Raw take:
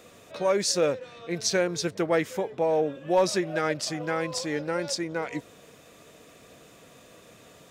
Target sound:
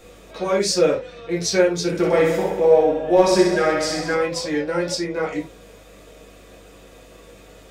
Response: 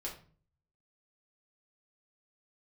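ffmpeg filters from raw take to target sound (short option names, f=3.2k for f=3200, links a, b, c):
-filter_complex "[0:a]aeval=exprs='val(0)+0.00158*(sin(2*PI*50*n/s)+sin(2*PI*2*50*n/s)/2+sin(2*PI*3*50*n/s)/3+sin(2*PI*4*50*n/s)/4+sin(2*PI*5*50*n/s)/5)':c=same,asettb=1/sr,asplit=3[a][b][c];[a]atrim=end=1.864[d];[b]atrim=start=1.86:end=4.14,asetpts=PTS-STARTPTS,afade=t=in:d=0.004:c=qsin,afade=t=out:st=2.276:d=0.004:c=qsin,aecho=1:1:60|126|198.6|278.5|366.3:0.631|0.398|0.251|0.158|0.1,atrim=end_sample=100548[e];[c]atrim=start=4.136[f];[d][e]acrossfade=d=0.004:c1=hsin:c2=qsin[g];[g][f]acrossfade=d=0.004:c1=qsin:c2=hsin[h];[1:a]atrim=start_sample=2205,atrim=end_sample=4410[i];[h][i]afir=irnorm=-1:irlink=0,volume=5.5dB"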